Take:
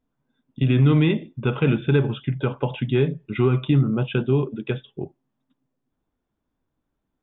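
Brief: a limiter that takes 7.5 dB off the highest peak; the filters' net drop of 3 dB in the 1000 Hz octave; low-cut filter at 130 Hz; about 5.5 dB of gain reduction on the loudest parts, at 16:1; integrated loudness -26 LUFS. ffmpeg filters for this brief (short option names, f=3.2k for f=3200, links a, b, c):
-af "highpass=130,equalizer=f=1k:t=o:g=-4,acompressor=threshold=-20dB:ratio=16,volume=4dB,alimiter=limit=-14.5dB:level=0:latency=1"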